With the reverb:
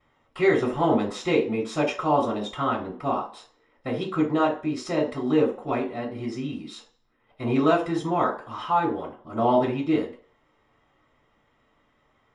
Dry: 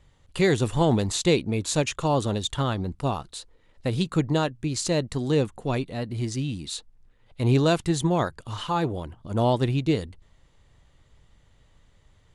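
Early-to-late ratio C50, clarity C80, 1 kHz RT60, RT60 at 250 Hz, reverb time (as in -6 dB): 9.0 dB, 14.0 dB, 0.45 s, 0.35 s, 0.45 s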